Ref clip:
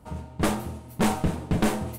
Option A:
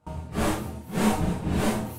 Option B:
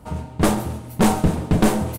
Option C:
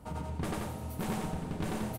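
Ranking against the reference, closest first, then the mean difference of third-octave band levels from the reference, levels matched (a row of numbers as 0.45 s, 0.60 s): B, A, C; 1.0 dB, 4.0 dB, 7.0 dB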